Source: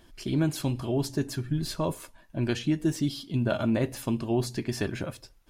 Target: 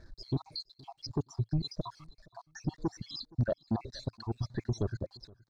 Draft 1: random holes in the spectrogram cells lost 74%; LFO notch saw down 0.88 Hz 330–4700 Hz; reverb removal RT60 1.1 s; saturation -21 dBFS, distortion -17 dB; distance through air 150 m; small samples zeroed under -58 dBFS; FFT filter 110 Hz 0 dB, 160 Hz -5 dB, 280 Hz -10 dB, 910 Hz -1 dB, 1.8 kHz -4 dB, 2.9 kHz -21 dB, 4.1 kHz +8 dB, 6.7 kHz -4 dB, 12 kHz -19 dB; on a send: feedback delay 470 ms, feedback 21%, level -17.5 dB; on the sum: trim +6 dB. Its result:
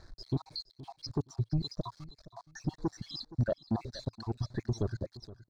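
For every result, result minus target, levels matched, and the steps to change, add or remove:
small samples zeroed: distortion +8 dB; echo-to-direct +7 dB
change: small samples zeroed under -65 dBFS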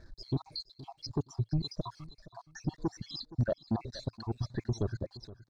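echo-to-direct +7 dB
change: feedback delay 470 ms, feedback 21%, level -24.5 dB

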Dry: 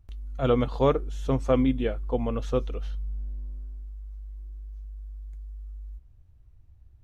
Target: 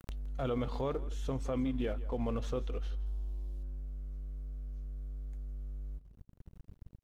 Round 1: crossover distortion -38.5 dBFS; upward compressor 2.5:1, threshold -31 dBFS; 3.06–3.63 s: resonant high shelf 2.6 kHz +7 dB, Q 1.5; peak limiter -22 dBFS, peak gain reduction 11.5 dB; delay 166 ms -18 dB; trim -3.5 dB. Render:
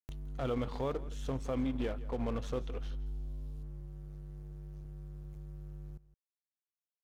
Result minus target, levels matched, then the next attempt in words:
crossover distortion: distortion +12 dB
crossover distortion -50.5 dBFS; upward compressor 2.5:1, threshold -31 dBFS; 3.06–3.63 s: resonant high shelf 2.6 kHz +7 dB, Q 1.5; peak limiter -22 dBFS, peak gain reduction 11.5 dB; delay 166 ms -18 dB; trim -3.5 dB

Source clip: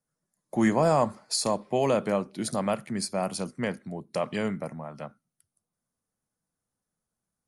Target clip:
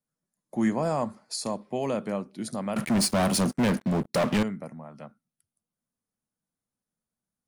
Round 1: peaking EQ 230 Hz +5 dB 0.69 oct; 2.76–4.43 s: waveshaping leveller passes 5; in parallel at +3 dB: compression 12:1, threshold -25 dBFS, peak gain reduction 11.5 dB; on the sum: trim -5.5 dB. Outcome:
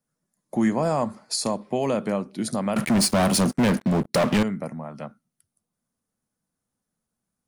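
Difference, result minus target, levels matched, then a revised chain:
compression: peak gain reduction +11.5 dB
peaking EQ 230 Hz +5 dB 0.69 oct; 2.76–4.43 s: waveshaping leveller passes 5; trim -5.5 dB

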